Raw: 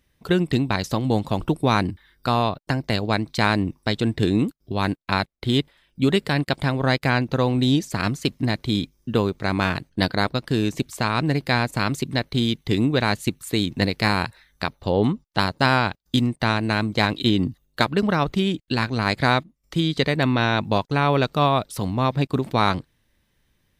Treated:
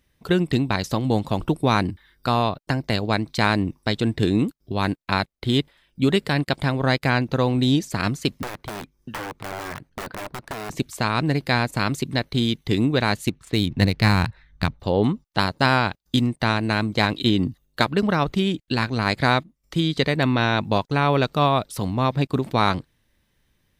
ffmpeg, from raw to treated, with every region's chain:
-filter_complex "[0:a]asettb=1/sr,asplit=3[s0][s1][s2];[s0]atrim=end=8.424[s3];[s1]atrim=start=8.42:end=10.7,asetpts=PTS-STARTPTS,afade=t=in:d=0.004:c=qsin,afade=t=out:st=2.276:d=0.004:c=qsin,bandreject=f=600:w=8.4,aeval=exprs='(mod(8.91*val(0)+1,2)-1)/8.91':c=same,acrossover=split=640|2100[s4][s5][s6];[s4]acompressor=threshold=0.0158:ratio=4[s7];[s5]acompressor=threshold=0.0282:ratio=4[s8];[s6]acompressor=threshold=0.00708:ratio=4[s9];[s7][s8][s9]amix=inputs=3:normalize=0[s10];[s2]atrim=start=10.696[s11];[s3][s10]acrossfade=d=0.004:c1=hsin:c2=qsin[s12];[s12][s11]acrossfade=d=0.004:c1=qsin:c2=hsin,asettb=1/sr,asplit=3[s13][s14][s15];[s13]atrim=end=13.274[s16];[s14]atrim=start=13.27:end=14.8,asetpts=PTS-STARTPTS,afade=t=in:d=0.004:c=qsin,afade=t=out:st=1.526:d=0.004:c=qsin,asubboost=boost=8.5:cutoff=210,adynamicsmooth=sensitivity=5.5:basefreq=3100[s17];[s15]atrim=start=14.796[s18];[s16][s17]acrossfade=d=0.004:c1=hsin:c2=qsin[s19];[s19][s18]acrossfade=d=0.004:c1=qsin:c2=hsin"

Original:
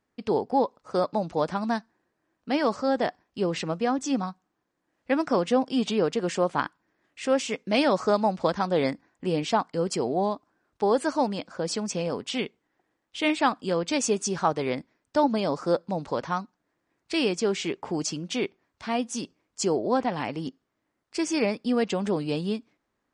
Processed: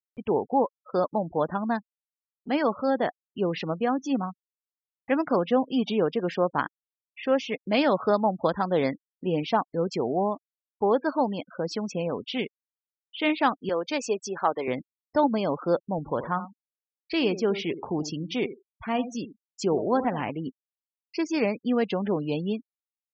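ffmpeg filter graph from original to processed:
-filter_complex "[0:a]asettb=1/sr,asplit=3[s0][s1][s2];[s0]atrim=end=13.694[s3];[s1]atrim=start=13.69:end=14.68,asetpts=PTS-STARTPTS,afade=t=in:d=0.004:c=qsin,afade=t=out:st=0.986:d=0.004:c=qsin,highpass=330,asoftclip=type=hard:threshold=0.266[s4];[s2]atrim=start=14.676[s5];[s3][s4]acrossfade=d=0.004:c1=hsin:c2=qsin[s6];[s6][s5]acrossfade=d=0.004:c1=qsin:c2=hsin,asettb=1/sr,asplit=3[s7][s8][s9];[s7]atrim=end=15.984[s10];[s8]atrim=start=15.98:end=20.3,asetpts=PTS-STARTPTS,afade=t=in:d=0.004:c=qsin,afade=t=out:st=4.316:d=0.004:c=qsin,lowshelf=f=69:g=9,asplit=2[s11][s12];[s12]adelay=79,lowpass=f=1900:p=1,volume=0.251,asplit=2[s13][s14];[s14]adelay=79,lowpass=f=1900:p=1,volume=0.17[s15];[s11][s13][s15]amix=inputs=3:normalize=0,atrim=end_sample=190512[s16];[s9]atrim=start=20.296[s17];[s10][s16]acrossfade=d=0.004:c1=hsin:c2=qsin[s18];[s18][s17]acrossfade=d=0.004:c1=qsin:c2=hsin,lowpass=4300,afftfilt=real='re*gte(hypot(re,im),0.0158)':imag='im*gte(hypot(re,im),0.0158)':win_size=1024:overlap=0.75,acompressor=mode=upward:threshold=0.0126:ratio=2.5"

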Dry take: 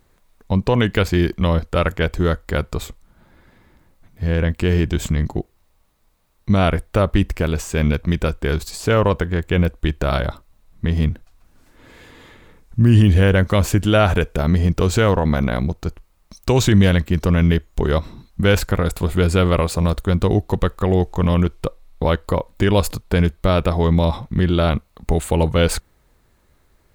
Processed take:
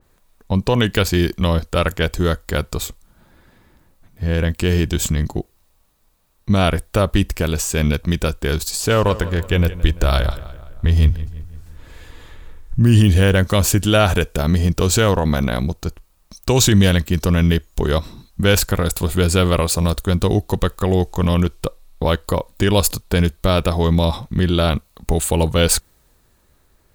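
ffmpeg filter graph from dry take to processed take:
-filter_complex "[0:a]asettb=1/sr,asplit=3[s0][s1][s2];[s0]atrim=end=8.724[s3];[s1]atrim=start=8.72:end=12.79,asetpts=PTS-STARTPTS,afade=t=in:d=0.004:c=qsin,afade=t=out:st=4.066:d=0.004:c=qsin,asplit=2[s4][s5];[s5]adelay=170,lowpass=f=3900:p=1,volume=0.168,asplit=2[s6][s7];[s7]adelay=170,lowpass=f=3900:p=1,volume=0.53,asplit=2[s8][s9];[s9]adelay=170,lowpass=f=3900:p=1,volume=0.53,asplit=2[s10][s11];[s11]adelay=170,lowpass=f=3900:p=1,volume=0.53,asplit=2[s12][s13];[s13]adelay=170,lowpass=f=3900:p=1,volume=0.53[s14];[s4][s6][s8][s10][s12][s14]amix=inputs=6:normalize=0,atrim=end_sample=179487,asubboost=boost=7.5:cutoff=75[s15];[s2]atrim=start=12.786[s16];[s3][s15]acrossfade=d=0.004:c1=hsin:c2=qsin[s17];[s17][s16]acrossfade=d=0.004:c1=qsin:c2=hsin,highshelf=f=6400:g=4.5,bandreject=f=2100:w=16,adynamicequalizer=threshold=0.0126:dfrequency=3000:dqfactor=0.7:tfrequency=3000:tqfactor=0.7:attack=5:release=100:ratio=0.375:range=3.5:mode=boostabove:tftype=highshelf"

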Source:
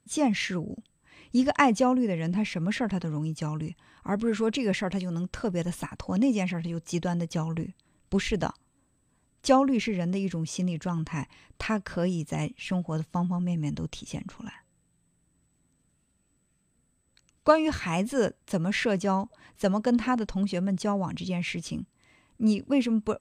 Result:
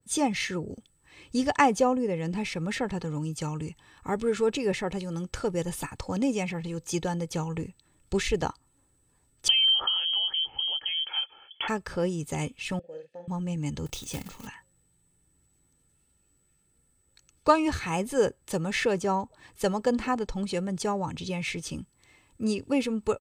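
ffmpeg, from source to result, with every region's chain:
-filter_complex "[0:a]asettb=1/sr,asplit=3[s0][s1][s2];[s0]atrim=end=9.484[s3];[s1]atrim=start=9.48:end=11.68,asetpts=PTS-STARTPTS,afade=t=in:d=0.004:c=qsin,afade=t=out:st=2.196:d=0.004:c=qsin,equalizer=f=300:t=o:w=1:g=13.5,acompressor=threshold=0.1:ratio=16:attack=3.2:release=140:knee=1:detection=peak,lowpass=f=2900:t=q:w=0.5098,lowpass=f=2900:t=q:w=0.6013,lowpass=f=2900:t=q:w=0.9,lowpass=f=2900:t=q:w=2.563,afreqshift=-3400[s4];[s2]atrim=start=11.676[s5];[s3][s4]acrossfade=d=0.004:c1=hsin:c2=qsin[s6];[s6][s5]acrossfade=d=0.004:c1=qsin:c2=hsin,asettb=1/sr,asplit=3[s7][s8][s9];[s7]atrim=end=12.794[s10];[s8]atrim=start=12.79:end=13.28,asetpts=PTS-STARTPTS,afade=t=in:d=0.004:c=qsin,afade=t=out:st=0.486:d=0.004:c=qsin,asplit=3[s11][s12][s13];[s11]bandpass=f=530:t=q:w=8,volume=1[s14];[s12]bandpass=f=1840:t=q:w=8,volume=0.501[s15];[s13]bandpass=f=2480:t=q:w=8,volume=0.355[s16];[s14][s15][s16]amix=inputs=3:normalize=0,asplit=2[s17][s18];[s18]adelay=47,volume=0.501[s19];[s17][s19]amix=inputs=2:normalize=0,atrim=end_sample=21609[s20];[s9]atrim=start=13.276[s21];[s10][s20]acrossfade=d=0.004:c1=hsin:c2=qsin[s22];[s22][s21]acrossfade=d=0.004:c1=qsin:c2=hsin,asettb=1/sr,asplit=3[s23][s24][s25];[s23]atrim=end=13.864[s26];[s24]atrim=start=13.86:end=14.47,asetpts=PTS-STARTPTS,afade=t=in:d=0.004:c=qsin,afade=t=out:st=0.606:d=0.004:c=qsin,bandreject=f=1500:w=5.6,acrusher=bits=3:mode=log:mix=0:aa=0.000001,asplit=2[s27][s28];[s28]adelay=29,volume=0.282[s29];[s27][s29]amix=inputs=2:normalize=0,atrim=end_sample=26901[s30];[s25]atrim=start=14.466[s31];[s26][s30]acrossfade=d=0.004:c1=hsin:c2=qsin[s32];[s32][s31]acrossfade=d=0.004:c1=qsin:c2=hsin,highshelf=f=6800:g=8.5,aecho=1:1:2.3:0.46,adynamicequalizer=threshold=0.01:dfrequency=1600:dqfactor=0.7:tfrequency=1600:tqfactor=0.7:attack=5:release=100:ratio=0.375:range=3:mode=cutabove:tftype=highshelf"

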